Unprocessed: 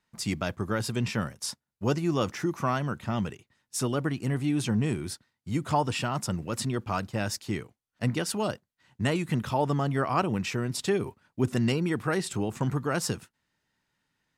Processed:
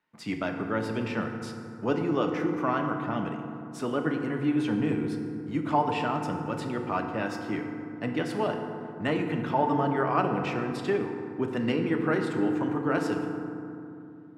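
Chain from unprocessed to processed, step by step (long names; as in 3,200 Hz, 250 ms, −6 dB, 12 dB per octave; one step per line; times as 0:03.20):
three-way crossover with the lows and the highs turned down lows −15 dB, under 180 Hz, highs −18 dB, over 3,200 Hz
feedback delay network reverb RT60 2.7 s, low-frequency decay 1.45×, high-frequency decay 0.4×, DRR 3 dB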